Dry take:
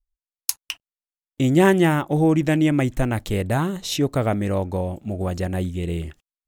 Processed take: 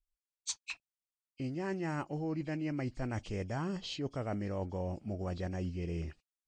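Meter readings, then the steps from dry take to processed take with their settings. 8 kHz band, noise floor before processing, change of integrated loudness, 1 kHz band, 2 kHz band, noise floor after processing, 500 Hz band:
-13.5 dB, under -85 dBFS, -16.5 dB, -16.5 dB, -16.5 dB, under -85 dBFS, -17.0 dB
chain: knee-point frequency compression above 2.1 kHz 1.5:1; reverse; compression 10:1, threshold -25 dBFS, peak gain reduction 15 dB; reverse; trim -8 dB

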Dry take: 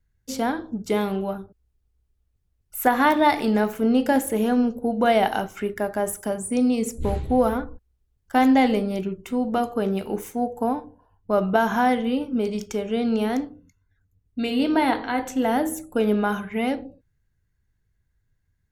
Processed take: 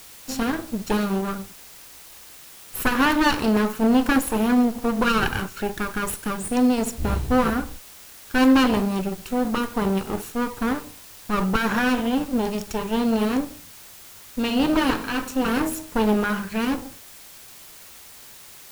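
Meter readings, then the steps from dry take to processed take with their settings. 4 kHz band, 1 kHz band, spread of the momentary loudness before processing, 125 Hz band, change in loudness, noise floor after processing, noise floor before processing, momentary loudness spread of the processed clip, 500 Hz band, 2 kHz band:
+4.5 dB, -2.5 dB, 10 LU, +3.0 dB, +0.5 dB, -45 dBFS, -71 dBFS, 22 LU, -3.0 dB, +3.0 dB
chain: comb filter that takes the minimum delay 0.73 ms; in parallel at -8.5 dB: word length cut 6-bit, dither triangular

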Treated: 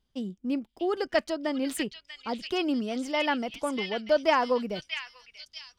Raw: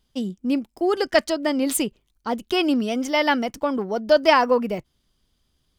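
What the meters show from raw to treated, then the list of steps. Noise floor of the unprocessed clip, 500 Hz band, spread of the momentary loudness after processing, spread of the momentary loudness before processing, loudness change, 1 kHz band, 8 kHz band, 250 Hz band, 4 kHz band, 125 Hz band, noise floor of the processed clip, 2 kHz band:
-71 dBFS, -7.0 dB, 12 LU, 12 LU, -7.0 dB, -7.0 dB, -11.5 dB, -7.0 dB, -6.0 dB, no reading, -74 dBFS, -6.5 dB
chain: treble shelf 6.4 kHz -9 dB; on a send: repeats whose band climbs or falls 640 ms, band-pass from 3 kHz, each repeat 0.7 oct, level 0 dB; on the sum: trim -7 dB

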